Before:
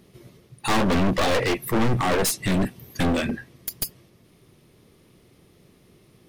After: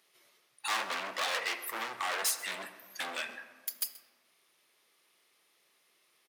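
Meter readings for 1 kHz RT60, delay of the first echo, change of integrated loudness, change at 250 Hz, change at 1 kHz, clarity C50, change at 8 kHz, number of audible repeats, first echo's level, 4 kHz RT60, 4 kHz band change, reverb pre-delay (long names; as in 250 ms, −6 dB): 1.4 s, 130 ms, −10.5 dB, −30.5 dB, −10.0 dB, 11.0 dB, −6.0 dB, 1, −19.5 dB, 0.75 s, −6.0 dB, 3 ms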